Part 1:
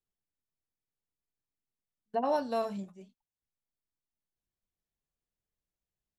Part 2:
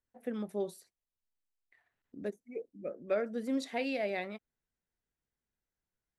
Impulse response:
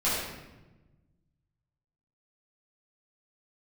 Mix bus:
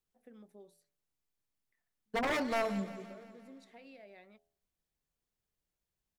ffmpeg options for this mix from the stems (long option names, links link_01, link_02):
-filter_complex "[0:a]aeval=exprs='0.0355*(abs(mod(val(0)/0.0355+3,4)-2)-1)':channel_layout=same,volume=2.5dB,asplit=2[link_01][link_02];[link_02]volume=-14.5dB[link_03];[1:a]acompressor=threshold=-34dB:ratio=6,bandreject=frequency=83.4:width_type=h:width=4,bandreject=frequency=166.8:width_type=h:width=4,bandreject=frequency=250.2:width_type=h:width=4,bandreject=frequency=333.6:width_type=h:width=4,bandreject=frequency=417:width_type=h:width=4,bandreject=frequency=500.4:width_type=h:width=4,bandreject=frequency=583.8:width_type=h:width=4,bandreject=frequency=667.2:width_type=h:width=4,bandreject=frequency=750.6:width_type=h:width=4,bandreject=frequency=834:width_type=h:width=4,volume=-16.5dB[link_04];[link_03]aecho=0:1:173|346|519|692|865|1038|1211|1384|1557:1|0.58|0.336|0.195|0.113|0.0656|0.0381|0.0221|0.0128[link_05];[link_01][link_04][link_05]amix=inputs=3:normalize=0"